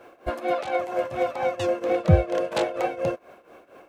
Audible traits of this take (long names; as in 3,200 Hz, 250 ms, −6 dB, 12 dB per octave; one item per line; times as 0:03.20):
a quantiser's noise floor 12 bits, dither triangular
tremolo triangle 4.3 Hz, depth 85%